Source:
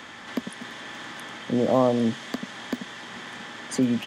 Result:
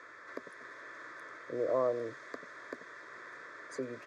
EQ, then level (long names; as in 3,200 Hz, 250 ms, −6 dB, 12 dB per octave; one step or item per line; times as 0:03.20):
high-pass filter 520 Hz 6 dB per octave
head-to-tape spacing loss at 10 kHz 20 dB
phaser with its sweep stopped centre 810 Hz, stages 6
−2.5 dB